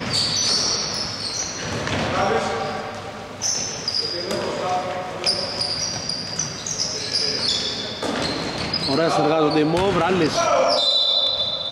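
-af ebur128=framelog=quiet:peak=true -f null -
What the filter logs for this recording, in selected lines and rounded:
Integrated loudness:
  I:         -20.7 LUFS
  Threshold: -30.8 LUFS
Loudness range:
  LRA:         5.2 LU
  Threshold: -41.6 LUFS
  LRA low:   -23.5 LUFS
  LRA high:  -18.3 LUFS
True peak:
  Peak:       -7.0 dBFS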